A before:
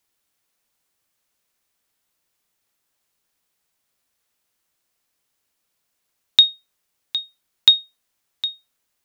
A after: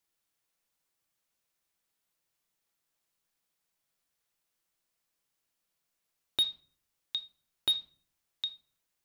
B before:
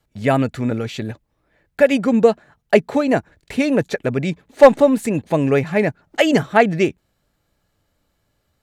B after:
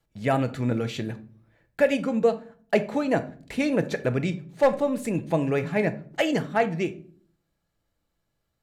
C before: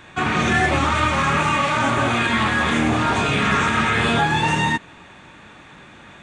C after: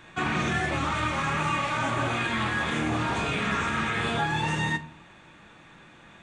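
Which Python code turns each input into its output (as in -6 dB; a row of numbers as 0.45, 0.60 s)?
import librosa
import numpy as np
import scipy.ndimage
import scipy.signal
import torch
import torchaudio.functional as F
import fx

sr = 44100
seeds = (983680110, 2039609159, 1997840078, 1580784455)

y = fx.rider(x, sr, range_db=4, speed_s=0.5)
y = fx.room_shoebox(y, sr, seeds[0], volume_m3=470.0, walls='furnished', distance_m=0.71)
y = fx.slew_limit(y, sr, full_power_hz=710.0)
y = y * 10.0 ** (-8.5 / 20.0)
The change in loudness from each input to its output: -14.5, -8.5, -8.0 LU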